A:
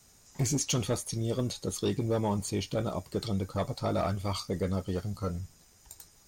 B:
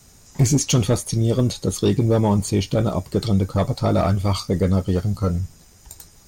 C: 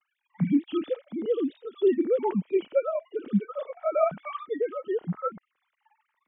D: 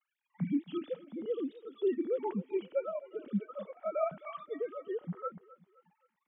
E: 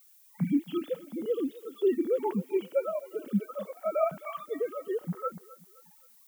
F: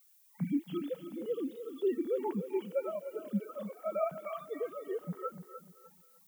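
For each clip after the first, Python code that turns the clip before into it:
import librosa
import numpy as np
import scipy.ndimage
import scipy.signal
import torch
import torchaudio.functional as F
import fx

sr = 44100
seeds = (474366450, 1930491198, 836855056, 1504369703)

y1 = fx.low_shelf(x, sr, hz=330.0, db=6.0)
y1 = F.gain(torch.from_numpy(y1), 8.0).numpy()
y2 = fx.sine_speech(y1, sr)
y2 = fx.hpss(y2, sr, part='percussive', gain_db=-16)
y2 = F.gain(torch.from_numpy(y2), -5.5).numpy()
y3 = fx.echo_feedback(y2, sr, ms=261, feedback_pct=39, wet_db=-19)
y3 = F.gain(torch.from_numpy(y3), -8.5).numpy()
y4 = fx.dmg_noise_colour(y3, sr, seeds[0], colour='violet', level_db=-64.0)
y4 = F.gain(torch.from_numpy(y4), 5.0).numpy()
y5 = fx.echo_feedback(y4, sr, ms=299, feedback_pct=29, wet_db=-10.5)
y5 = F.gain(torch.from_numpy(y5), -5.5).numpy()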